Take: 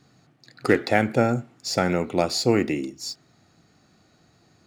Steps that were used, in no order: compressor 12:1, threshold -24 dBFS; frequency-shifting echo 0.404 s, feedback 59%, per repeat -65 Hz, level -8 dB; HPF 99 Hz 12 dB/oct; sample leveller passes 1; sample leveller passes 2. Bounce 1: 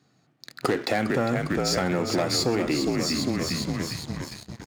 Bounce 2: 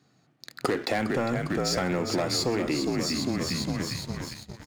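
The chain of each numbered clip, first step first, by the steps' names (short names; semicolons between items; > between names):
frequency-shifting echo > second sample leveller > compressor > first sample leveller > HPF; first sample leveller > frequency-shifting echo > HPF > second sample leveller > compressor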